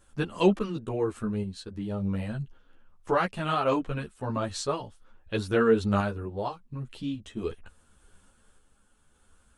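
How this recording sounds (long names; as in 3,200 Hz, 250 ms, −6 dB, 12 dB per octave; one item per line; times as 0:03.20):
sample-and-hold tremolo
a shimmering, thickened sound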